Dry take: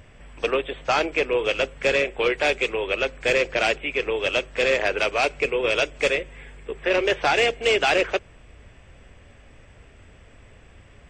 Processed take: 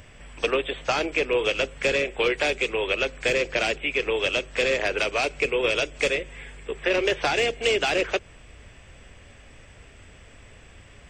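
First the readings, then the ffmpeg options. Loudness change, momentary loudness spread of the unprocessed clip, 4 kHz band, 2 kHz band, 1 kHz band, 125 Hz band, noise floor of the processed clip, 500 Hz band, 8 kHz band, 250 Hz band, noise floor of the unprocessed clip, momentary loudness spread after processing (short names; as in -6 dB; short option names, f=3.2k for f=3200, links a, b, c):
-1.5 dB, 6 LU, -0.5 dB, -1.5 dB, -4.0 dB, 0.0 dB, -49 dBFS, -2.0 dB, +1.0 dB, -0.5 dB, -50 dBFS, 4 LU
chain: -filter_complex "[0:a]highshelf=f=2.4k:g=7.5,acrossover=split=460[a][b];[b]acompressor=threshold=-22dB:ratio=6[c];[a][c]amix=inputs=2:normalize=0"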